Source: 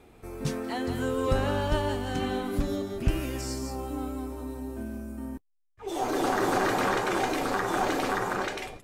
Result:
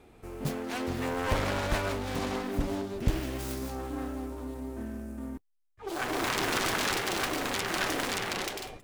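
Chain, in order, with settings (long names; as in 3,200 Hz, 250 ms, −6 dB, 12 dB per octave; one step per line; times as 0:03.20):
phase distortion by the signal itself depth 0.9 ms
level −1.5 dB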